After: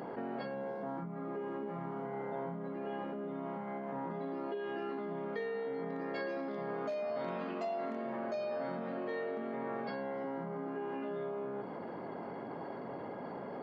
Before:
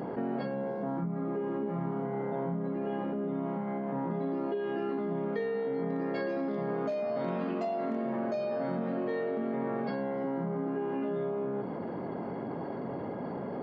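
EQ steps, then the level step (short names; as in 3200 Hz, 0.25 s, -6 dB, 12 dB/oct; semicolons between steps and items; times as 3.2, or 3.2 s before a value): low shelf 430 Hz -10 dB; -1.0 dB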